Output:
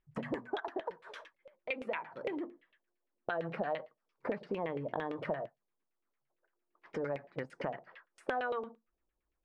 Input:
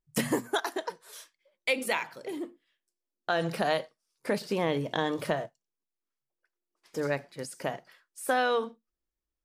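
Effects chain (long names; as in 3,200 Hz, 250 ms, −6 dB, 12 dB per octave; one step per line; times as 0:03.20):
downward compressor 6 to 1, threshold −41 dBFS, peak gain reduction 17.5 dB
auto-filter low-pass saw down 8.8 Hz 490–2,800 Hz
level +4 dB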